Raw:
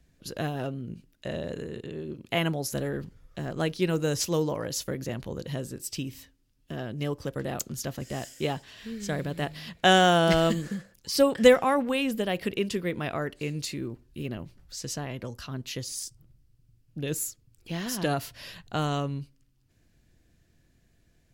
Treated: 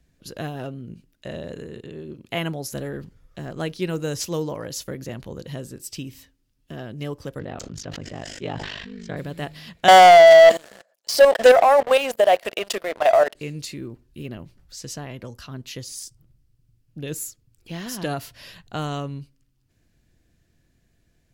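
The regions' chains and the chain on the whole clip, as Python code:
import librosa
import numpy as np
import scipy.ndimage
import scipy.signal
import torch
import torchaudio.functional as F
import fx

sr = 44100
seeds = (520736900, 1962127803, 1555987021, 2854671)

y = fx.chain(x, sr, fx.ring_mod(carrier_hz=25.0),
    fx.air_absorb(metres=140.0),
    fx.sustainer(db_per_s=26.0), at=(7.39, 9.17))
y = fx.chain(y, sr, fx.highpass_res(hz=650.0, q=8.0),
    fx.level_steps(step_db=12),
    fx.leveller(passes=3), at=(9.88, 13.35))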